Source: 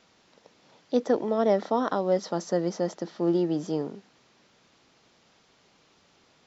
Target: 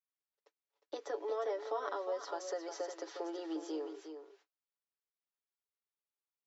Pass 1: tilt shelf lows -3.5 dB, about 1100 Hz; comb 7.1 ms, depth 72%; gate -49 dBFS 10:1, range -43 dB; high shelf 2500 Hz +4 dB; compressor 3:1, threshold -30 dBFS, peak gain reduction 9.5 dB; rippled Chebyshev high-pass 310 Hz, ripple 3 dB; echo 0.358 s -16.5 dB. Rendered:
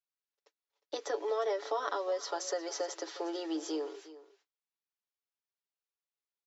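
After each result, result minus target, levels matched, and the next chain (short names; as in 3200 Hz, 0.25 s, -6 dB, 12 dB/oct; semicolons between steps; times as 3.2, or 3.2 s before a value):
echo-to-direct -8 dB; 4000 Hz band +4.5 dB; compressor: peak gain reduction -4 dB
tilt shelf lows -3.5 dB, about 1100 Hz; comb 7.1 ms, depth 72%; gate -49 dBFS 10:1, range -43 dB; high shelf 2500 Hz +4 dB; compressor 3:1, threshold -30 dBFS, peak gain reduction 9.5 dB; rippled Chebyshev high-pass 310 Hz, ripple 3 dB; echo 0.358 s -8.5 dB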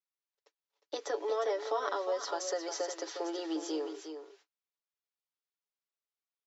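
4000 Hz band +5.0 dB; compressor: peak gain reduction -4 dB
tilt shelf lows -3.5 dB, about 1100 Hz; comb 7.1 ms, depth 72%; gate -49 dBFS 10:1, range -43 dB; high shelf 2500 Hz -4 dB; compressor 3:1, threshold -30 dBFS, peak gain reduction 9.5 dB; rippled Chebyshev high-pass 310 Hz, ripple 3 dB; echo 0.358 s -8.5 dB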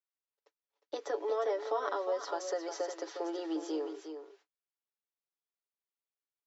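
compressor: peak gain reduction -4.5 dB
tilt shelf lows -3.5 dB, about 1100 Hz; comb 7.1 ms, depth 72%; gate -49 dBFS 10:1, range -43 dB; high shelf 2500 Hz -4 dB; compressor 3:1, threshold -36.5 dBFS, peak gain reduction 13.5 dB; rippled Chebyshev high-pass 310 Hz, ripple 3 dB; echo 0.358 s -8.5 dB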